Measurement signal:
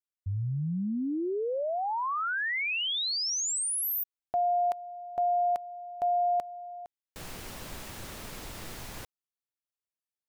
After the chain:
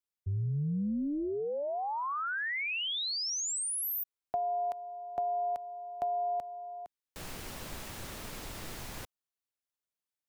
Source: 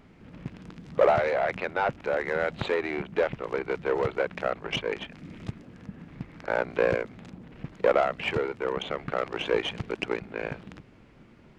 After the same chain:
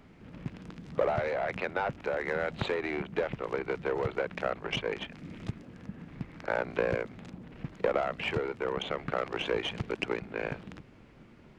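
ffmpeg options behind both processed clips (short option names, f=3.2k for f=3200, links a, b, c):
-filter_complex "[0:a]tremolo=f=290:d=0.182,acrossover=split=210[a][b];[b]acompressor=threshold=-38dB:ratio=2:attack=70:release=65:knee=2.83:detection=peak[c];[a][c]amix=inputs=2:normalize=0"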